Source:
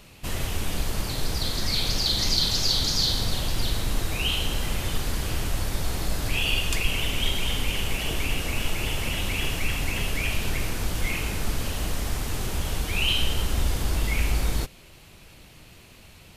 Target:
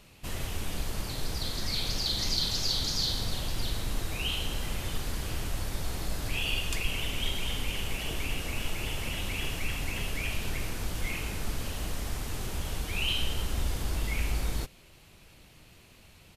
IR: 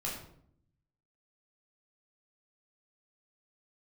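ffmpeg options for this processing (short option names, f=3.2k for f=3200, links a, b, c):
-af "aresample=32000,aresample=44100,volume=-6dB"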